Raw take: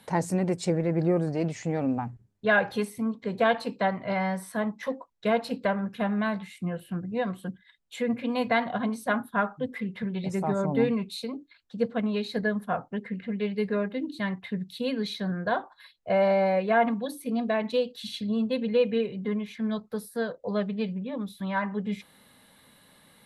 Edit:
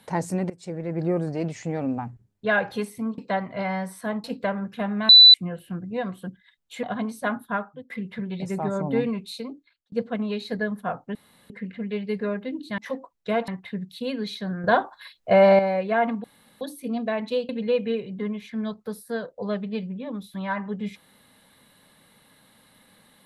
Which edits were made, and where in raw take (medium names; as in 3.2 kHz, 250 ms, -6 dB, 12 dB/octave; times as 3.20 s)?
0.50–1.12 s: fade in, from -19.5 dB
3.18–3.69 s: delete
4.75–5.45 s: move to 14.27 s
6.30–6.55 s: bleep 3.98 kHz -6.5 dBFS
8.04–8.67 s: delete
9.33–9.74 s: fade out, to -22 dB
11.29–11.76 s: fade out
12.99 s: insert room tone 0.35 s
15.43–16.38 s: gain +7.5 dB
17.03 s: insert room tone 0.37 s
17.91–18.55 s: delete